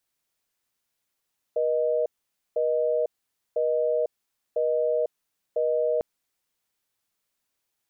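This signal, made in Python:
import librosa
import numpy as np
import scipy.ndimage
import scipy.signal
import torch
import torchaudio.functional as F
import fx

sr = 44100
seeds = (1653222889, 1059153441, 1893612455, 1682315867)

y = fx.call_progress(sr, length_s=4.45, kind='busy tone', level_db=-24.0)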